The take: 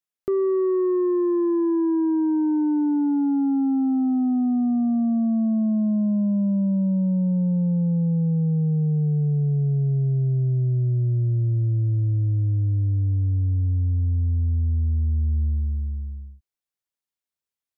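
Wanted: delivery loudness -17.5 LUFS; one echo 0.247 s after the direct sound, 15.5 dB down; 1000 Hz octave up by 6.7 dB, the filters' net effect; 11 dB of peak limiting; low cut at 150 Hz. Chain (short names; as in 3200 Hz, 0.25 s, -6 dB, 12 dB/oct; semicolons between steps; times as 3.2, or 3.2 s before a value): HPF 150 Hz; bell 1000 Hz +8 dB; limiter -26.5 dBFS; echo 0.247 s -15.5 dB; gain +14.5 dB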